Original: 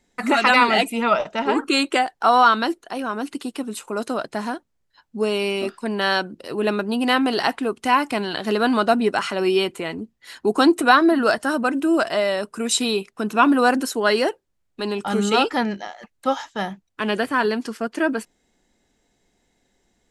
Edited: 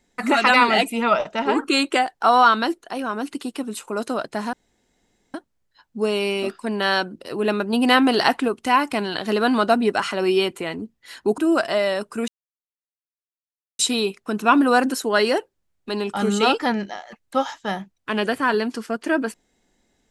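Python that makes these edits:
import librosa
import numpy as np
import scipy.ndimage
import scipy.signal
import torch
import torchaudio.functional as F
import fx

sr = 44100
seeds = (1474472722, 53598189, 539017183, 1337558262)

y = fx.edit(x, sr, fx.insert_room_tone(at_s=4.53, length_s=0.81),
    fx.clip_gain(start_s=6.92, length_s=0.75, db=3.0),
    fx.cut(start_s=10.57, length_s=1.23),
    fx.insert_silence(at_s=12.7, length_s=1.51), tone=tone)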